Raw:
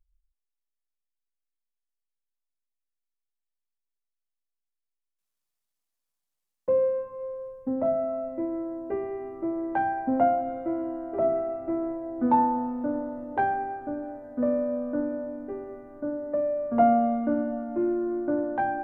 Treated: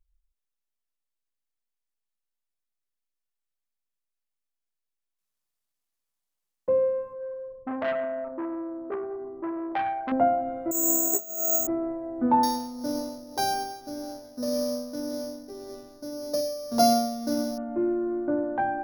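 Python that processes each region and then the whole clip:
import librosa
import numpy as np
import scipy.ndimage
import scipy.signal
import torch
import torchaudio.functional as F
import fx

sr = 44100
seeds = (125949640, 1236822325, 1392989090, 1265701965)

y = fx.chain(x, sr, fx.envelope_sharpen(power=1.5),
    fx.transformer_sat(knee_hz=1200.0), at=(7.13, 10.12))
y = fx.chain(y, sr, fx.resample_bad(factor=6, down='filtered', up='zero_stuff'),
    fx.over_compress(threshold_db=-24.0, ratio=-0.5),
    fx.notch_comb(f0_hz=570.0), at=(10.71, 11.67))
y = fx.chain(y, sr, fx.sample_sort(block=8),
    fx.tremolo(hz=1.8, depth=0.54), at=(12.43, 17.58))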